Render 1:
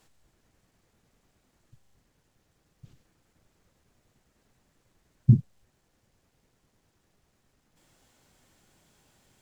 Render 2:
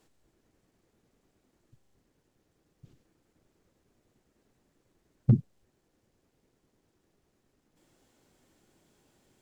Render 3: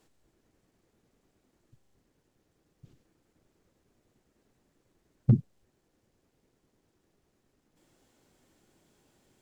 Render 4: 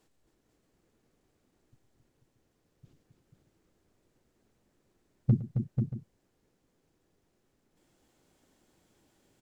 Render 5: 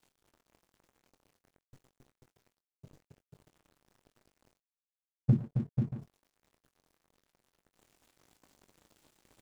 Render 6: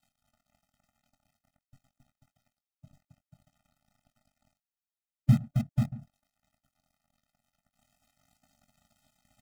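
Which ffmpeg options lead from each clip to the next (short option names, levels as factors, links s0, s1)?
-af "equalizer=f=340:w=0.98:g=8.5,asoftclip=type=hard:threshold=0.447,volume=0.531"
-af anull
-af "aecho=1:1:111|269|489|631:0.158|0.447|0.531|0.178,volume=0.708"
-filter_complex "[0:a]areverse,acompressor=mode=upward:threshold=0.0112:ratio=2.5,areverse,aeval=exprs='sgn(val(0))*max(abs(val(0))-0.00335,0)':c=same,asplit=2[s0][s1];[s1]adelay=22,volume=0.282[s2];[s0][s2]amix=inputs=2:normalize=0"
-filter_complex "[0:a]asplit=2[s0][s1];[s1]acrusher=bits=4:mix=0:aa=0.000001,volume=0.531[s2];[s0][s2]amix=inputs=2:normalize=0,afftfilt=real='re*eq(mod(floor(b*sr/1024/300),2),0)':imag='im*eq(mod(floor(b*sr/1024/300),2),0)':win_size=1024:overlap=0.75"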